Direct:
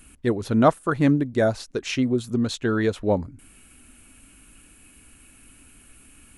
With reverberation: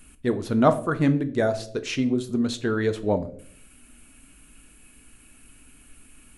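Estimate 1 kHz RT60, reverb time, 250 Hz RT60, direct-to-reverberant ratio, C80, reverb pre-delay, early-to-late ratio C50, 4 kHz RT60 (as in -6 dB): 0.45 s, 0.60 s, 0.80 s, 9.0 dB, 19.0 dB, 4 ms, 15.5 dB, 0.40 s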